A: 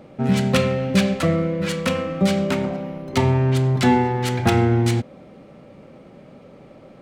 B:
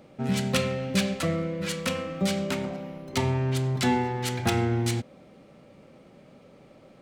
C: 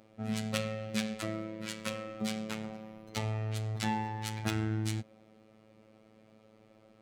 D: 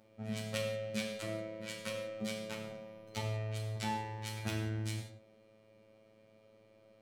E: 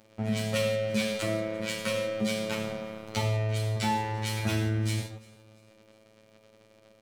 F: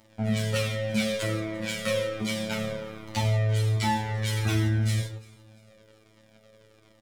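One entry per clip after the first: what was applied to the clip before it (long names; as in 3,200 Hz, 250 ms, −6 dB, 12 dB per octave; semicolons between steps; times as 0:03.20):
high-shelf EQ 2,900 Hz +8 dB; level −8 dB
phases set to zero 109 Hz; level −6 dB
reverb whose tail is shaped and stops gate 210 ms falling, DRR −0.5 dB; level −6.5 dB
leveller curve on the samples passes 2; downward compressor 1.5 to 1, threshold −41 dBFS, peak gain reduction 6 dB; repeating echo 344 ms, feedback 38%, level −23 dB; level +7.5 dB
double-tracking delay 27 ms −9 dB; flanger whose copies keep moving one way falling 1.3 Hz; level +5.5 dB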